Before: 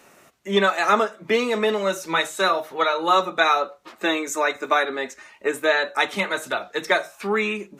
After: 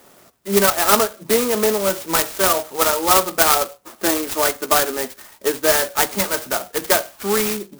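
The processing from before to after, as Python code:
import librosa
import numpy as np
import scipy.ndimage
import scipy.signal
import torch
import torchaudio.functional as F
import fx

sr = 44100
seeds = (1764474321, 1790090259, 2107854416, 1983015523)

y = fx.clock_jitter(x, sr, seeds[0], jitter_ms=0.11)
y = y * librosa.db_to_amplitude(3.5)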